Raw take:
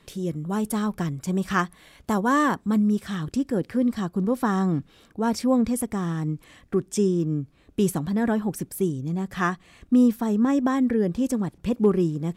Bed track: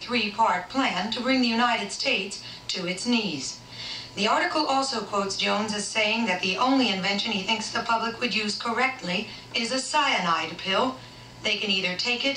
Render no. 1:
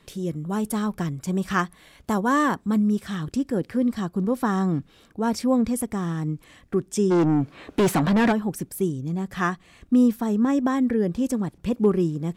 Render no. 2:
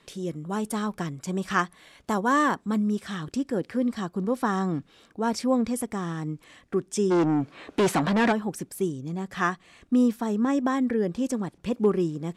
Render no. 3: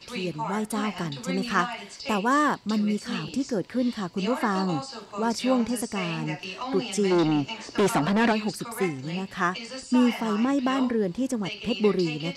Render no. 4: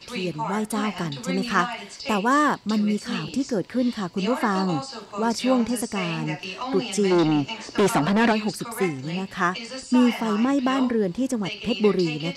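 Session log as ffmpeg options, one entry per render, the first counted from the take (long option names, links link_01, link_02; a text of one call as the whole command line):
ffmpeg -i in.wav -filter_complex "[0:a]asplit=3[link_01][link_02][link_03];[link_01]afade=type=out:start_time=7.1:duration=0.02[link_04];[link_02]asplit=2[link_05][link_06];[link_06]highpass=frequency=720:poles=1,volume=28dB,asoftclip=type=tanh:threshold=-11.5dB[link_07];[link_05][link_07]amix=inputs=2:normalize=0,lowpass=frequency=2200:poles=1,volume=-6dB,afade=type=in:start_time=7.1:duration=0.02,afade=type=out:start_time=8.31:duration=0.02[link_08];[link_03]afade=type=in:start_time=8.31:duration=0.02[link_09];[link_04][link_08][link_09]amix=inputs=3:normalize=0" out.wav
ffmpeg -i in.wav -af "lowpass=10000,lowshelf=frequency=170:gain=-10.5" out.wav
ffmpeg -i in.wav -i bed.wav -filter_complex "[1:a]volume=-10.5dB[link_01];[0:a][link_01]amix=inputs=2:normalize=0" out.wav
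ffmpeg -i in.wav -af "volume=2.5dB" out.wav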